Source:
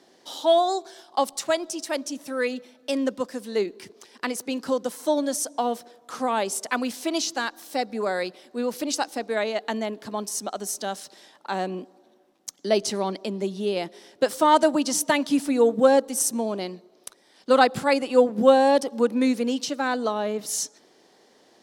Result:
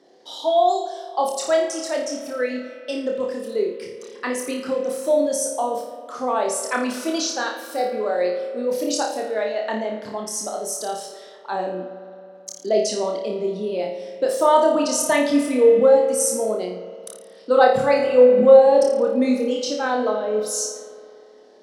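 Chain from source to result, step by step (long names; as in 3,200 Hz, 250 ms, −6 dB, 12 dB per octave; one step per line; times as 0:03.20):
spectral envelope exaggerated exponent 1.5
flutter between parallel walls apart 4.8 metres, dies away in 0.52 s
spring reverb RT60 2.7 s, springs 54 ms, chirp 55 ms, DRR 9 dB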